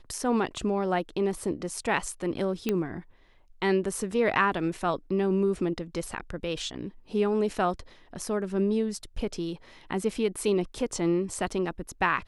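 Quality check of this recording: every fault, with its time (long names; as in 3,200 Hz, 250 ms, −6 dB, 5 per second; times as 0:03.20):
0:02.69: click −13 dBFS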